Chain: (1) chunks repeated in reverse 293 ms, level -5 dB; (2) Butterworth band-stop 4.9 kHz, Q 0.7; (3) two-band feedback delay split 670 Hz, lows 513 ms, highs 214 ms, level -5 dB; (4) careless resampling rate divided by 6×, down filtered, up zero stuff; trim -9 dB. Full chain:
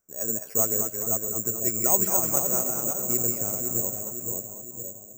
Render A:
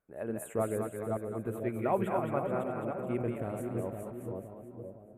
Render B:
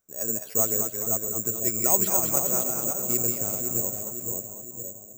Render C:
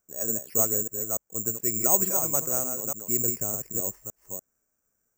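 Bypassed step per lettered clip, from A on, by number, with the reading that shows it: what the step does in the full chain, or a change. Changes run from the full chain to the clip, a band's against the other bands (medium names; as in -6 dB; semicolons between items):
4, crest factor change -7.5 dB; 2, 4 kHz band +4.0 dB; 3, momentary loudness spread change +4 LU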